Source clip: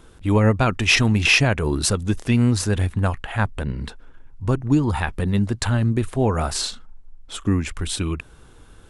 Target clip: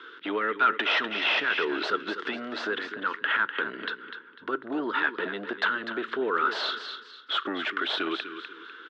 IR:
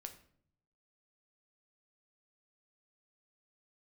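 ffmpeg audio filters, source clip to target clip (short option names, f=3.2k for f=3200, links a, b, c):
-filter_complex "[0:a]acrossover=split=1100[a][b];[a]dynaudnorm=f=460:g=9:m=6dB[c];[c][b]amix=inputs=2:normalize=0,alimiter=limit=-12.5dB:level=0:latency=1:release=12,acompressor=threshold=-24dB:ratio=3,asuperstop=centerf=690:order=4:qfactor=0.54,aecho=1:1:249|498|747:0.266|0.0798|0.0239,asplit=2[d][e];[1:a]atrim=start_sample=2205[f];[e][f]afir=irnorm=-1:irlink=0,volume=-8.5dB[g];[d][g]amix=inputs=2:normalize=0,asplit=2[h][i];[i]highpass=f=720:p=1,volume=16dB,asoftclip=type=tanh:threshold=-14dB[j];[h][j]amix=inputs=2:normalize=0,lowpass=f=1.2k:p=1,volume=-6dB,highpass=f=390:w=0.5412,highpass=f=390:w=1.3066,equalizer=f=440:t=q:w=4:g=4,equalizer=f=640:t=q:w=4:g=8,equalizer=f=910:t=q:w=4:g=4,equalizer=f=1.4k:t=q:w=4:g=8,equalizer=f=2.4k:t=q:w=4:g=-7,equalizer=f=3.4k:t=q:w=4:g=5,lowpass=f=3.7k:w=0.5412,lowpass=f=3.7k:w=1.3066,volume=5dB"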